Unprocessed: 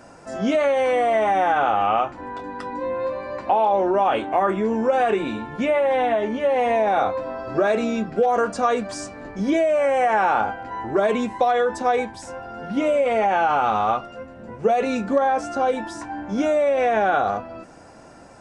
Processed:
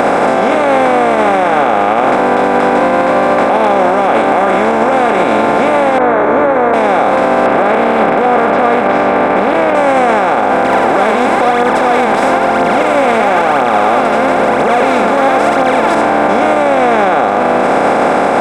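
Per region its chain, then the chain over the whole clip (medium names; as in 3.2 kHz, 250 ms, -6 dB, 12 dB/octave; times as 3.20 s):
5.98–6.74 s: elliptic low-pass 1.5 kHz, stop band 70 dB + static phaser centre 780 Hz, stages 6
7.46–9.75 s: steep low-pass 2.6 kHz + compression 1.5:1, threshold -25 dBFS + loudspeaker Doppler distortion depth 0.28 ms
10.63–15.95 s: tilt shelf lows -5 dB, about 1.1 kHz + phaser 1 Hz, delay 5 ms, feedback 71%
whole clip: spectral levelling over time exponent 0.2; peaking EQ 6.3 kHz -9 dB 1.3 oct; loudness maximiser +5.5 dB; trim -1 dB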